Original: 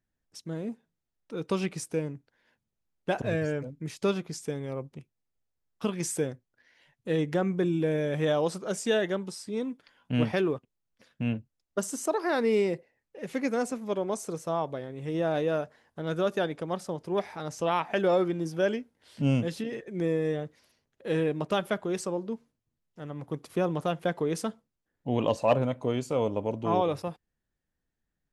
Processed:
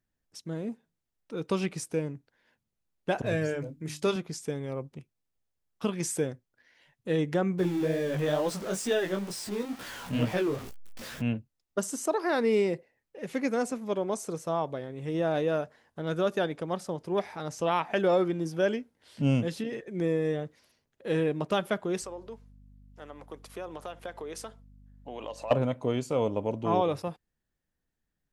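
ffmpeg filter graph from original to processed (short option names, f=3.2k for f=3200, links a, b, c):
-filter_complex "[0:a]asettb=1/sr,asplit=3[a][b][c];[a]atrim=end=3.264[d];[b]atrim=start=3.26:end=4.16,asetpts=PTS-STARTPTS,afade=t=in:d=0.004:c=qsin,afade=t=out:st=0.896:d=0.004:c=qsin,highshelf=f=4.5k:g=5.5,bandreject=f=50:t=h:w=6,bandreject=f=100:t=h:w=6,bandreject=f=150:t=h:w=6,bandreject=f=200:t=h:w=6,bandreject=f=250:t=h:w=6,bandreject=f=300:t=h:w=6,asplit=2[e][f];[f]adelay=26,volume=-13dB[g];[e][g]amix=inputs=2:normalize=0,atrim=end_sample=39690[h];[c]atrim=start=4.156[i];[d][h]acrossfade=d=0.004:c1=hsin:c2=qsin[j];[j][i]acrossfade=d=0.004:c1=qsin:c2=hsin,asettb=1/sr,asplit=3[k][l][m];[k]atrim=end=7.584[n];[l]atrim=start=7.58:end=11.22,asetpts=PTS-STARTPTS,afade=t=in:d=0.004:c=qsin,afade=t=out:st=3.636:d=0.004:c=qsin,aeval=exprs='val(0)+0.5*0.0224*sgn(val(0))':c=same,flanger=delay=15.5:depth=6.1:speed=2.2[o];[m]atrim=start=11.216[p];[n][o]acrossfade=d=0.004:c1=hsin:c2=qsin[q];[q][p]acrossfade=d=0.004:c1=qsin:c2=hsin,asettb=1/sr,asplit=3[r][s][t];[r]atrim=end=22.024[u];[s]atrim=start=22.02:end=25.51,asetpts=PTS-STARTPTS,afade=t=in:d=0.004:c=qsin,afade=t=out:st=3.486:d=0.004:c=qsin,highpass=470,acompressor=threshold=-37dB:ratio=3:attack=3.2:release=140:knee=1:detection=peak,aeval=exprs='val(0)+0.00224*(sin(2*PI*50*n/s)+sin(2*PI*2*50*n/s)/2+sin(2*PI*3*50*n/s)/3+sin(2*PI*4*50*n/s)/4+sin(2*PI*5*50*n/s)/5)':c=same[v];[t]atrim=start=25.506[w];[u][v]acrossfade=d=0.004:c1=hsin:c2=qsin[x];[x][w]acrossfade=d=0.004:c1=qsin:c2=hsin"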